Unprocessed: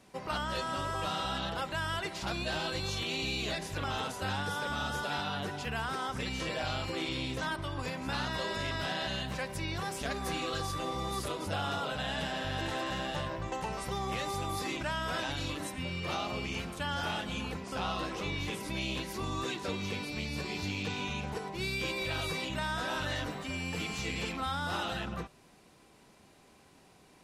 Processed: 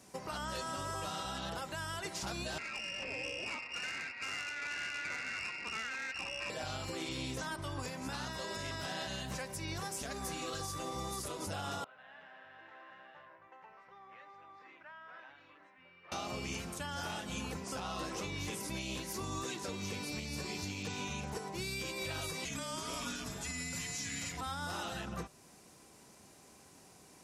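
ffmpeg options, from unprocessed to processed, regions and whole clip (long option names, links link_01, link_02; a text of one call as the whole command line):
ffmpeg -i in.wav -filter_complex "[0:a]asettb=1/sr,asplit=3[link_01][link_02][link_03];[link_01]atrim=end=2.584[link_04];[link_02]atrim=start=2.58:end=6.5,asetpts=PTS-STARTPTS,afade=type=in:duration=0.004:curve=qsin,afade=type=out:start_time=3.916:duration=0.004:curve=qsin,lowpass=frequency=2500:width_type=q:width=0.5098,lowpass=frequency=2500:width_type=q:width=0.6013,lowpass=frequency=2500:width_type=q:width=0.9,lowpass=frequency=2500:width_type=q:width=2.563,afreqshift=-2900,aeval=exprs='(tanh(31.6*val(0)+0.45)-tanh(0.45))/31.6':channel_layout=same[link_05];[link_03]atrim=start=6.496[link_06];[link_04][link_05]acrossfade=duration=0.004:curve1=hsin:curve2=qsin[link_07];[link_07][link_06]acrossfade=duration=0.004:curve1=qsin:curve2=hsin,asettb=1/sr,asplit=3[link_08][link_09][link_10];[link_08]atrim=end=11.844[link_11];[link_09]atrim=start=11.84:end=16.12,asetpts=PTS-STARTPTS,afade=type=in:duration=0.004:curve=qsin,afade=type=out:start_time=4.276:duration=0.004:curve=qsin,lowpass=frequency=1900:width=0.5412,lowpass=frequency=1900:width=1.3066,aderivative[link_12];[link_10]atrim=start=16.116[link_13];[link_11][link_12]acrossfade=duration=0.004:curve1=hsin:curve2=qsin[link_14];[link_14][link_13]acrossfade=duration=0.004:curve1=qsin:curve2=hsin,asettb=1/sr,asplit=3[link_15][link_16][link_17];[link_15]atrim=end=22.454[link_18];[link_16]atrim=start=22.45:end=24.41,asetpts=PTS-STARTPTS,afade=type=in:duration=0.004:curve=qsin,afade=type=out:start_time=1.956:duration=0.004:curve=qsin,equalizer=frequency=8100:width_type=o:width=2.5:gain=7.5,afreqshift=-340[link_19];[link_17]atrim=start=24.406[link_20];[link_18][link_19]acrossfade=duration=0.004:curve1=hsin:curve2=qsin[link_21];[link_21][link_20]acrossfade=duration=0.004:curve1=qsin:curve2=hsin,highpass=51,highshelf=frequency=4700:width_type=q:width=1.5:gain=6.5,alimiter=level_in=5.5dB:limit=-24dB:level=0:latency=1:release=312,volume=-5.5dB" out.wav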